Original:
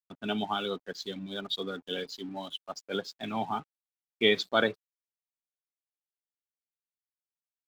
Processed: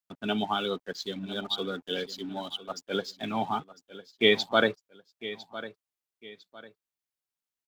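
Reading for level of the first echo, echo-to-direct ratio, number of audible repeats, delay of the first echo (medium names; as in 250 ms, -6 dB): -15.5 dB, -15.0 dB, 2, 1003 ms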